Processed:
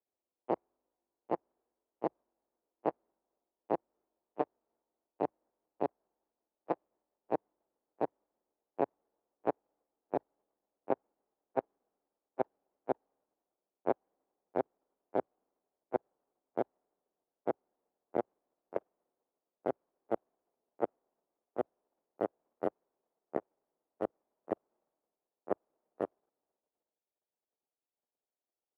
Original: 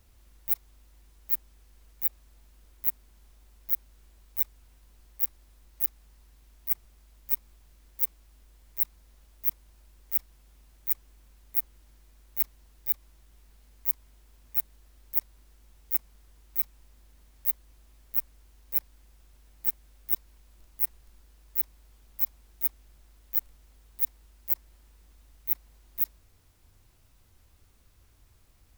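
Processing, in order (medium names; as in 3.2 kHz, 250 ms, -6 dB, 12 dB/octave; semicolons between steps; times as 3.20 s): pitch bend over the whole clip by -9 st starting unshifted; Chebyshev shaper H 6 -10 dB, 7 -21 dB, 8 -34 dB, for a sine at -5.5 dBFS; level held to a coarse grid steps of 10 dB; Butterworth band-pass 540 Hz, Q 0.99; three bands expanded up and down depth 40%; trim +8.5 dB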